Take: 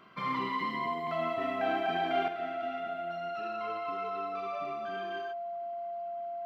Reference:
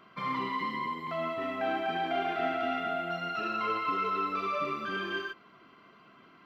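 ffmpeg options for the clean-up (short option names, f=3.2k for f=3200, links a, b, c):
-af "bandreject=f=690:w=30,asetnsamples=n=441:p=0,asendcmd='2.28 volume volume 8.5dB',volume=0dB"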